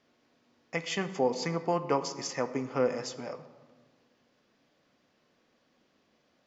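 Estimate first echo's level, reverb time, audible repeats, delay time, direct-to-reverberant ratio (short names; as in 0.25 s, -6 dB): none, 1.5 s, none, none, 10.5 dB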